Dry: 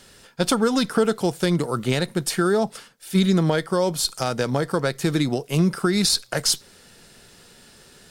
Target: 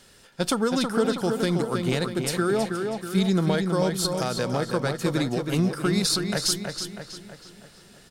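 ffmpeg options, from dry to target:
-filter_complex "[0:a]asplit=2[a][b];[b]adelay=322,lowpass=f=5k:p=1,volume=-5dB,asplit=2[c][d];[d]adelay=322,lowpass=f=5k:p=1,volume=0.52,asplit=2[e][f];[f]adelay=322,lowpass=f=5k:p=1,volume=0.52,asplit=2[g][h];[h]adelay=322,lowpass=f=5k:p=1,volume=0.52,asplit=2[i][j];[j]adelay=322,lowpass=f=5k:p=1,volume=0.52,asplit=2[k][l];[l]adelay=322,lowpass=f=5k:p=1,volume=0.52,asplit=2[m][n];[n]adelay=322,lowpass=f=5k:p=1,volume=0.52[o];[a][c][e][g][i][k][m][o]amix=inputs=8:normalize=0,volume=-4dB"

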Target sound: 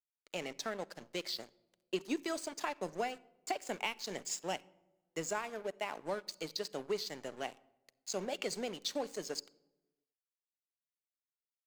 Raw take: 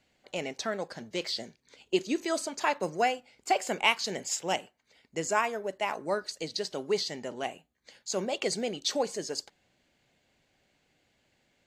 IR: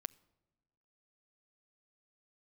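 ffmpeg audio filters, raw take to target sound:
-filter_complex "[0:a]acrossover=split=270[a][b];[b]acompressor=threshold=-30dB:ratio=6[c];[a][c]amix=inputs=2:normalize=0,aeval=exprs='sgn(val(0))*max(abs(val(0))-0.00596,0)':c=same,equalizer=f=69:w=0.64:g=-7.5[d];[1:a]atrim=start_sample=2205[e];[d][e]afir=irnorm=-1:irlink=0,volume=1dB"

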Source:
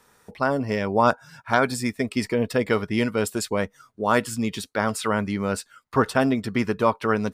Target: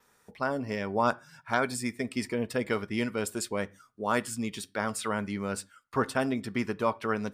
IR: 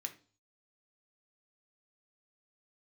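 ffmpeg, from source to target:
-filter_complex "[0:a]adynamicequalizer=threshold=0.00316:dfrequency=8800:dqfactor=5.1:tfrequency=8800:tqfactor=5.1:attack=5:release=100:ratio=0.375:range=2.5:mode=boostabove:tftype=bell,asplit=2[a][b];[1:a]atrim=start_sample=2205,atrim=end_sample=6174,asetrate=40131,aresample=44100[c];[b][c]afir=irnorm=-1:irlink=0,volume=-8dB[d];[a][d]amix=inputs=2:normalize=0,volume=-8.5dB"

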